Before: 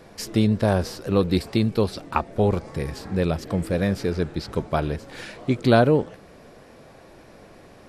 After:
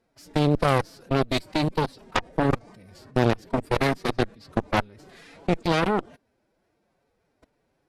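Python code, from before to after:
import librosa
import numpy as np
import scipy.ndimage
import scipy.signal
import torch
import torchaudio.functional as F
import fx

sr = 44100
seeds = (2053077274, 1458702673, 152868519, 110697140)

y = fx.level_steps(x, sr, step_db=23)
y = fx.pitch_keep_formants(y, sr, semitones=5.5)
y = fx.cheby_harmonics(y, sr, harmonics=(3, 4, 7), levels_db=(-16, -14, -17), full_scale_db=-13.0)
y = F.gain(torch.from_numpy(y), 4.5).numpy()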